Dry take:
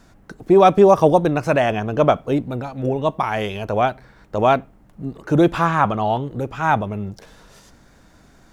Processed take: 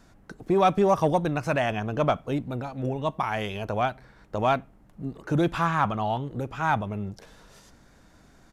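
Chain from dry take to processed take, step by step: dynamic bell 430 Hz, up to -6 dB, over -27 dBFS, Q 1; in parallel at -10.5 dB: overload inside the chain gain 13.5 dB; on the sum: resampled via 32 kHz; trim -7 dB

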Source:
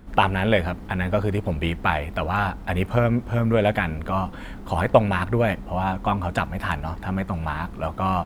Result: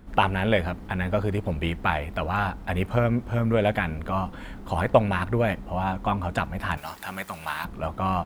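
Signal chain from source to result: 6.77–7.65 s: tilt EQ +4.5 dB/octave; trim -2.5 dB

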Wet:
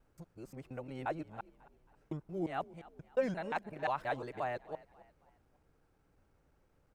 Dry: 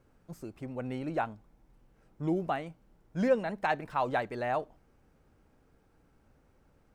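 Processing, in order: time reversed locally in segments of 176 ms; peaking EQ 230 Hz -5 dB 0.44 oct; on a send: frequency-shifting echo 271 ms, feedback 40%, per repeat +38 Hz, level -20 dB; on the sum: trim -5.5 dB

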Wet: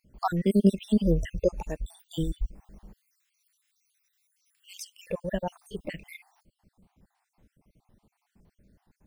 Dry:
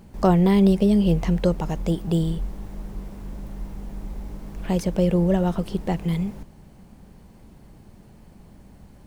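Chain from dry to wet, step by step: random holes in the spectrogram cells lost 54%; spectral noise reduction 13 dB; 2.93–5.07 s: Bessel high-pass 2.9 kHz, order 8

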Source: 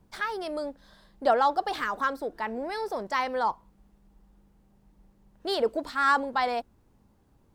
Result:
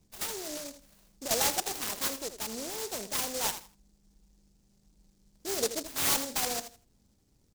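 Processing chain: 0.56–1.31 s: compression 5:1, threshold -32 dBFS, peak gain reduction 13 dB; on a send: feedback delay 81 ms, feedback 23%, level -11 dB; on the sum: delay time shaken by noise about 5.9 kHz, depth 0.25 ms; trim -5 dB

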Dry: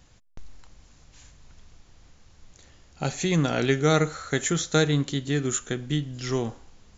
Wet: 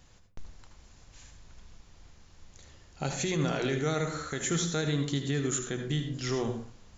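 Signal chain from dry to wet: hum notches 60/120/180/240/300 Hz; peak limiter -19.5 dBFS, peak gain reduction 10.5 dB; on a send: reverberation RT60 0.30 s, pre-delay 71 ms, DRR 6 dB; on the sum: trim -1.5 dB

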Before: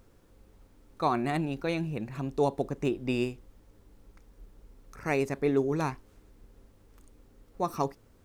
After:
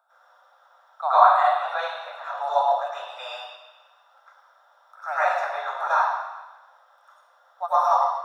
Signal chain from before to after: steep high-pass 600 Hz 72 dB/octave; reverberation RT60 1.1 s, pre-delay 87 ms, DRR -14 dB; trim -8 dB

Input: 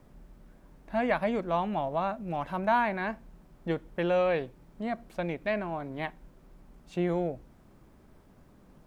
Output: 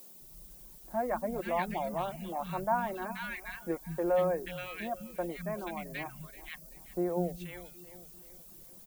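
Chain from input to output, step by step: comb 5.6 ms, depth 41%; three bands offset in time mids, lows, highs 200/480 ms, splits 200/1500 Hz; added noise violet -49 dBFS; on a send: feedback delay 382 ms, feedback 44%, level -16 dB; on the sum: reverb removal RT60 0.58 s; trim -3 dB

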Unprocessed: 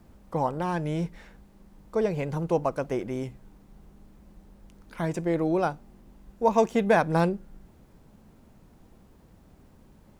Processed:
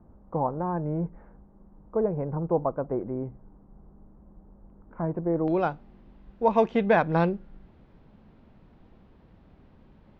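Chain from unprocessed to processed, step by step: low-pass 1.2 kHz 24 dB/octave, from 5.48 s 3.8 kHz

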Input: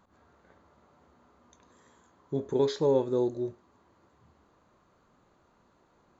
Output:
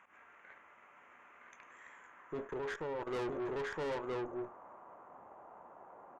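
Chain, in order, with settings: band-pass sweep 2.3 kHz -> 770 Hz, 1.79–4.38 s; on a send: delay 965 ms -4.5 dB; 2.45–3.07 s: on the sum: level held to a coarse grid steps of 17 dB; Butterworth band-stop 4.3 kHz, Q 1.1; valve stage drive 52 dB, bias 0.35; trim +17 dB

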